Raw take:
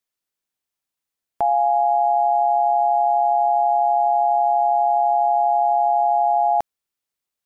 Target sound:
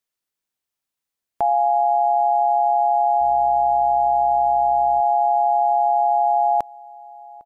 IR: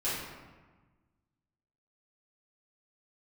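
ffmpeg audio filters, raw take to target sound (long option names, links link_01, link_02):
-filter_complex "[0:a]asettb=1/sr,asplit=3[link_01][link_02][link_03];[link_01]atrim=end=3.204[link_04];[link_02]atrim=start=3.2:end=5.01,asetpts=PTS-STARTPTS,afade=type=in:duration=0.004:curve=qsin,afade=type=out:start_time=1.806:duration=0.004:curve=qsin,aeval=exprs='val(0)+0.00501*(sin(2*PI*60*n/s)+sin(2*PI*2*60*n/s)/2+sin(2*PI*3*60*n/s)/3+sin(2*PI*4*60*n/s)/4+sin(2*PI*5*60*n/s)/5)':channel_layout=same[link_05];[link_03]atrim=start=5.006[link_06];[link_04][link_05]acrossfade=duration=0.004:curve1=hsin:curve2=qsin[link_07];[link_07][link_06]acrossfade=duration=0.004:curve1=qsin:curve2=hsin,asplit=2[link_08][link_09];[link_09]adelay=804,lowpass=frequency=1000:poles=1,volume=-21dB,asplit=2[link_10][link_11];[link_11]adelay=804,lowpass=frequency=1000:poles=1,volume=0.33[link_12];[link_08][link_10][link_12]amix=inputs=3:normalize=0"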